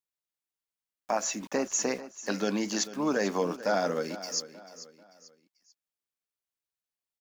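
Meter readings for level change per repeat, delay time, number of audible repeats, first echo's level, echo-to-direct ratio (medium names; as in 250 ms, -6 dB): -8.5 dB, 441 ms, 3, -15.0 dB, -14.5 dB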